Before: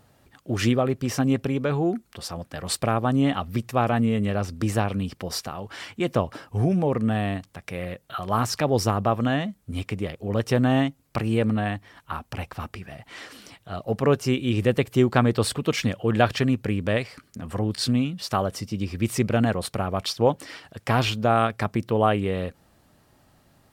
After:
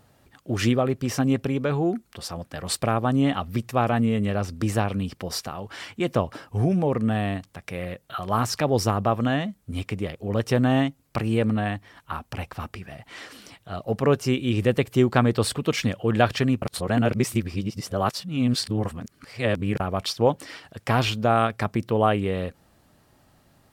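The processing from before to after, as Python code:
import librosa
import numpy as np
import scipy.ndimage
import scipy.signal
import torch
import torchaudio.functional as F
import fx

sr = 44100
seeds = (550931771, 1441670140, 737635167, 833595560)

y = fx.edit(x, sr, fx.reverse_span(start_s=16.62, length_s=3.18), tone=tone)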